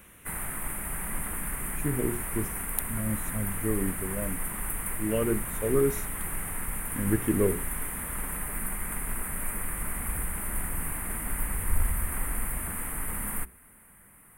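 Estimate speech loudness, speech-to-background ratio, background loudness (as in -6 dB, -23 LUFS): -31.0 LUFS, 2.0 dB, -33.0 LUFS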